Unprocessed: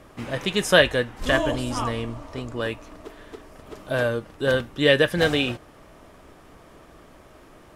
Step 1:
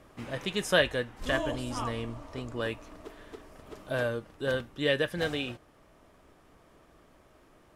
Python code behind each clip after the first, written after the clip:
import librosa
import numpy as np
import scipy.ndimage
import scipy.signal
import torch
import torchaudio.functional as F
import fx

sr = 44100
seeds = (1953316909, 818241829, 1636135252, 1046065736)

y = fx.rider(x, sr, range_db=4, speed_s=2.0)
y = F.gain(torch.from_numpy(y), -9.0).numpy()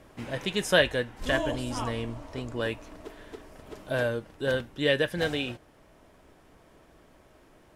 y = fx.notch(x, sr, hz=1200.0, q=10.0)
y = F.gain(torch.from_numpy(y), 2.5).numpy()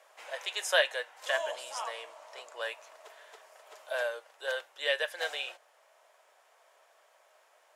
y = scipy.signal.sosfilt(scipy.signal.butter(6, 560.0, 'highpass', fs=sr, output='sos'), x)
y = fx.peak_eq(y, sr, hz=7000.0, db=4.0, octaves=0.38)
y = F.gain(torch.from_numpy(y), -2.5).numpy()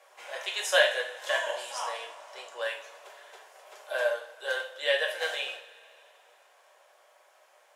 y = fx.rev_double_slope(x, sr, seeds[0], early_s=0.47, late_s=2.9, knee_db=-21, drr_db=-0.5)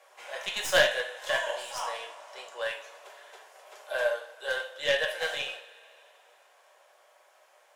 y = fx.tracing_dist(x, sr, depth_ms=0.052)